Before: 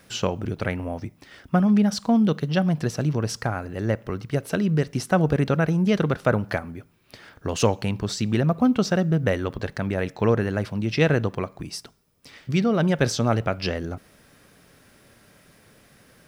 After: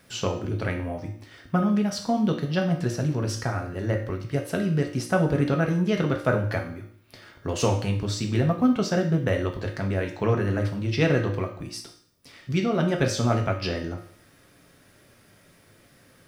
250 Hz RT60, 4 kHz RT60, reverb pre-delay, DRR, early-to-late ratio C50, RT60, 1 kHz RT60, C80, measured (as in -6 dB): 0.55 s, 0.55 s, 3 ms, 1.5 dB, 8.0 dB, 0.55 s, 0.55 s, 11.5 dB